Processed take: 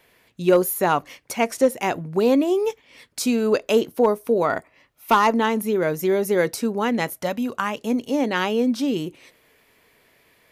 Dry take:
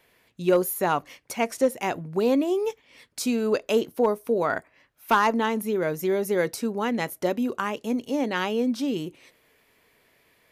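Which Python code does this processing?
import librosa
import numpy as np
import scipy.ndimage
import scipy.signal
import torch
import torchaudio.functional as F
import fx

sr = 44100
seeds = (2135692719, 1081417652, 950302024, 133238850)

y = fx.notch(x, sr, hz=1600.0, q=5.7, at=(4.46, 5.28))
y = fx.peak_eq(y, sr, hz=370.0, db=fx.line((7.15, -14.0), (7.78, -7.0)), octaves=0.7, at=(7.15, 7.78), fade=0.02)
y = y * librosa.db_to_amplitude(4.0)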